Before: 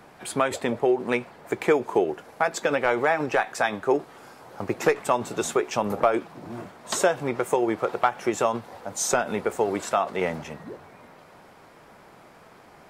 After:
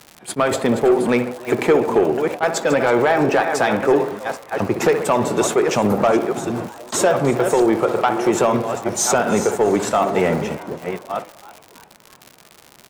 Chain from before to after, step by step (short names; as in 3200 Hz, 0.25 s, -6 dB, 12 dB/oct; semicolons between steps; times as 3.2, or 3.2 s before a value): reverse delay 0.66 s, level -11 dB; HPF 88 Hz; low shelf 470 Hz +6 dB; darkening echo 65 ms, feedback 64%, low-pass 2200 Hz, level -13 dB; gate -33 dBFS, range -14 dB; in parallel at +3 dB: limiter -14 dBFS, peak gain reduction 8.5 dB; on the sum: crackle 110/s -26 dBFS; soft clip -7 dBFS, distortion -17 dB; on a send: frequency-shifting echo 0.325 s, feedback 48%, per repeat +130 Hz, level -18.5 dB; on the sum: attack slew limiter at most 460 dB/s